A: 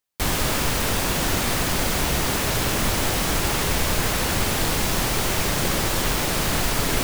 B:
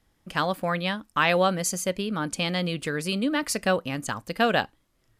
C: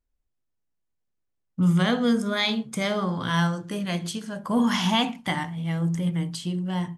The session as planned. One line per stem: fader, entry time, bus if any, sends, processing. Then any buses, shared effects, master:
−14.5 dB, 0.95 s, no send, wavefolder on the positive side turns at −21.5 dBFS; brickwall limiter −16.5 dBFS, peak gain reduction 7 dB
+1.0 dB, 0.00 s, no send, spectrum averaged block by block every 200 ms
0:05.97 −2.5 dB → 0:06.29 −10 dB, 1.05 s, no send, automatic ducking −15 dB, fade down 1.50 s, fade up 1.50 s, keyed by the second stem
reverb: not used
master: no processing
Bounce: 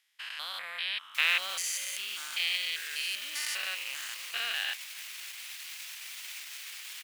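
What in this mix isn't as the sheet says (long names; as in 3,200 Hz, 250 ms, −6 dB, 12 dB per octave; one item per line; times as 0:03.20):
stem C: muted
master: extra high-pass with resonance 2,400 Hz, resonance Q 1.8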